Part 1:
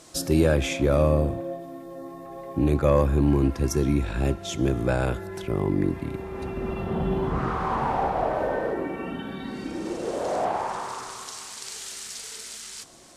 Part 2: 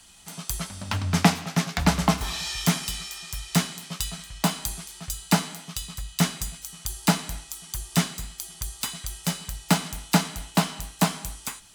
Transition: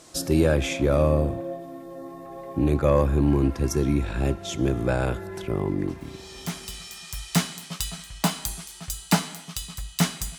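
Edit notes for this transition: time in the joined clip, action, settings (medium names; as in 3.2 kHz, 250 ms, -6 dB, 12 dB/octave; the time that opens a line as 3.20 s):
part 1
6.37 s: go over to part 2 from 2.57 s, crossfade 1.70 s quadratic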